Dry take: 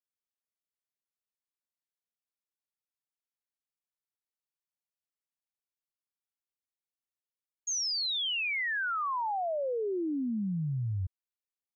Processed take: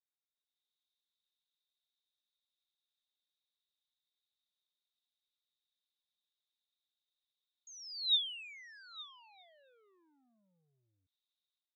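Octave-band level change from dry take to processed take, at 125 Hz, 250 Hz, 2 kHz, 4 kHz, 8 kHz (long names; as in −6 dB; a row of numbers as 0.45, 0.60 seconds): below −40 dB, below −40 dB, −20.5 dB, −3.0 dB, can't be measured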